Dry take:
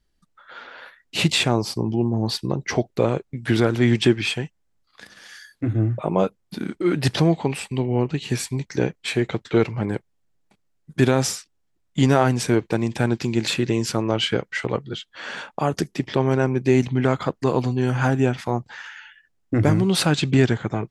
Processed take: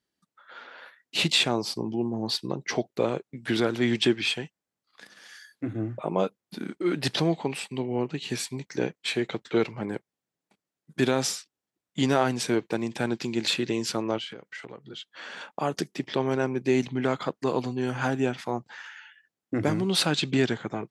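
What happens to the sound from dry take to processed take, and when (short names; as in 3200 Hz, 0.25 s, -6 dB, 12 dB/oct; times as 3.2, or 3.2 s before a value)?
14.18–15.41 compressor 8:1, threshold -31 dBFS
whole clip: HPF 180 Hz 12 dB/oct; dynamic EQ 3800 Hz, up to +5 dB, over -40 dBFS, Q 1.4; gain -5 dB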